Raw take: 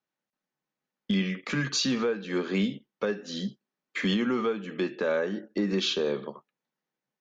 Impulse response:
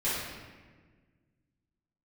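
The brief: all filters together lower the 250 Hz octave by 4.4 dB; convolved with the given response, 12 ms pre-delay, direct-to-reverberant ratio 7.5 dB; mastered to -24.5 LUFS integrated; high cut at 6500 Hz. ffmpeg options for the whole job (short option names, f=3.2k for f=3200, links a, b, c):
-filter_complex "[0:a]lowpass=6.5k,equalizer=f=250:t=o:g=-6,asplit=2[a][b];[1:a]atrim=start_sample=2205,adelay=12[c];[b][c]afir=irnorm=-1:irlink=0,volume=-17dB[d];[a][d]amix=inputs=2:normalize=0,volume=6dB"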